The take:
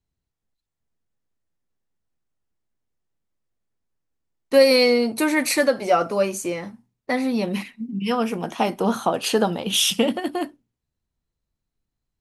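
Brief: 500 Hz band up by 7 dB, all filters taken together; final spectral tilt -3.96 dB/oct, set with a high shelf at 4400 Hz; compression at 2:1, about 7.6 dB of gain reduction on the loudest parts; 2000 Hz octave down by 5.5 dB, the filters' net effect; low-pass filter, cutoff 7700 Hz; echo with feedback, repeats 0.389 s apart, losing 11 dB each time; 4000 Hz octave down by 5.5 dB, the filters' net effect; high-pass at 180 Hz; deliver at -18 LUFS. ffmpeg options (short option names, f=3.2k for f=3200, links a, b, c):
-af "highpass=180,lowpass=7.7k,equalizer=f=500:t=o:g=8,equalizer=f=2k:t=o:g=-6,equalizer=f=4k:t=o:g=-7.5,highshelf=f=4.4k:g=5,acompressor=threshold=-17dB:ratio=2,aecho=1:1:389|778|1167:0.282|0.0789|0.0221,volume=3dB"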